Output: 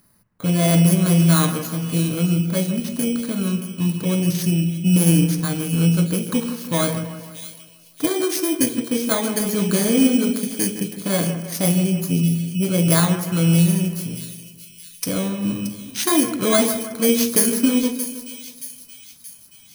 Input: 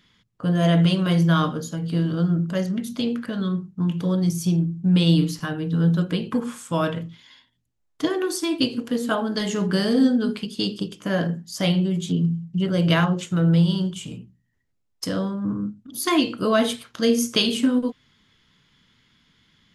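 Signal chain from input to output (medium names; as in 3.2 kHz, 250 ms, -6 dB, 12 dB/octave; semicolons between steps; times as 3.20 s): bit-reversed sample order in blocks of 16 samples; dynamic bell 7.6 kHz, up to +6 dB, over -45 dBFS, Q 0.93; two-band feedback delay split 2.5 kHz, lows 160 ms, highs 626 ms, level -10.5 dB; trim +2 dB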